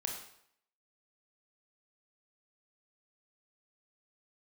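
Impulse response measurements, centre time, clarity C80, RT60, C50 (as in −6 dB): 33 ms, 7.5 dB, 0.70 s, 5.0 dB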